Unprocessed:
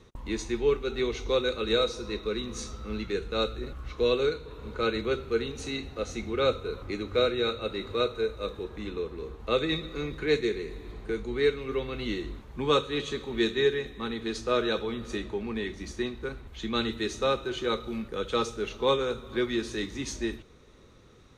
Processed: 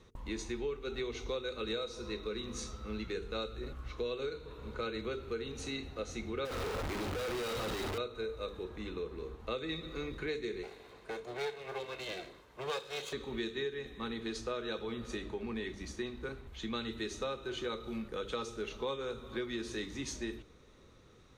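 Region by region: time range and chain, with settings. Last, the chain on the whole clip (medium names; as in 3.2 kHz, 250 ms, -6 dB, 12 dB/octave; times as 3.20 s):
6.45–7.98 s: one-bit comparator + treble shelf 4.6 kHz -10.5 dB
10.63–13.13 s: comb filter that takes the minimum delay 1.9 ms + high-pass 410 Hz 6 dB/octave
whole clip: hum notches 50/100/150/200/250/300/350/400/450 Hz; compression 6:1, threshold -30 dBFS; trim -4 dB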